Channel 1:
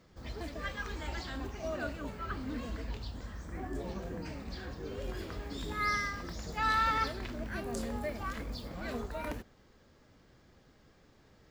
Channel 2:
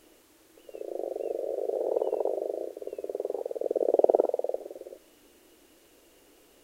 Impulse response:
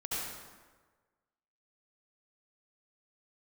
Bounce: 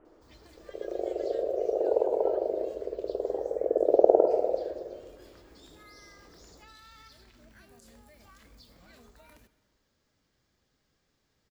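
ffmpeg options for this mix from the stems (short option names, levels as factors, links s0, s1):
-filter_complex "[0:a]acrossover=split=200|3000[s0][s1][s2];[s1]acompressor=threshold=0.0158:ratio=6[s3];[s0][s3][s2]amix=inputs=3:normalize=0,alimiter=level_in=2.82:limit=0.0631:level=0:latency=1:release=160,volume=0.355,adelay=50,volume=0.168,asplit=2[s4][s5];[s5]volume=0.119[s6];[1:a]lowpass=f=1300:w=0.5412,lowpass=f=1300:w=1.3066,volume=0.944,asplit=2[s7][s8];[s8]volume=0.355[s9];[2:a]atrim=start_sample=2205[s10];[s6][s9]amix=inputs=2:normalize=0[s11];[s11][s10]afir=irnorm=-1:irlink=0[s12];[s4][s7][s12]amix=inputs=3:normalize=0,highshelf=f=2700:g=11.5"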